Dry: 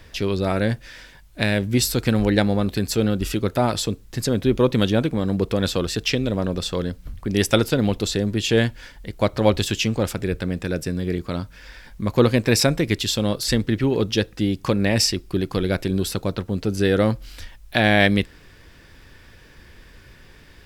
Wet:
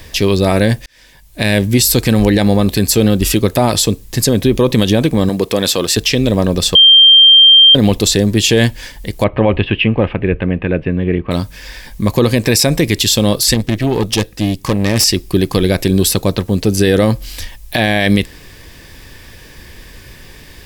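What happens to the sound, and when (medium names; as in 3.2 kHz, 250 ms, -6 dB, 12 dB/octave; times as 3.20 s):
0.86–1.57 s: fade in
5.29–5.97 s: high-pass 320 Hz 6 dB/octave
6.75–7.75 s: bleep 3.17 kHz -12 dBFS
9.24–11.31 s: elliptic low-pass 2.8 kHz, stop band 60 dB
13.54–15.04 s: valve stage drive 18 dB, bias 0.75
whole clip: treble shelf 6.2 kHz +10 dB; band-stop 1.4 kHz, Q 5.5; loudness maximiser +11 dB; trim -1 dB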